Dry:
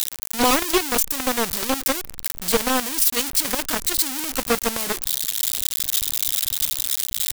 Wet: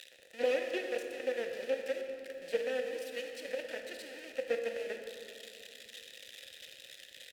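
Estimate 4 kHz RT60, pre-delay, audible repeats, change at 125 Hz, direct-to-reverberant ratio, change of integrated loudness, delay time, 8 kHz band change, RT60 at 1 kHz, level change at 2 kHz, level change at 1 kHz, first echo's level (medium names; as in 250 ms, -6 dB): 1.6 s, 22 ms, 1, under -25 dB, 4.0 dB, -17.0 dB, 401 ms, -32.0 dB, 2.4 s, -13.0 dB, -23.5 dB, -17.0 dB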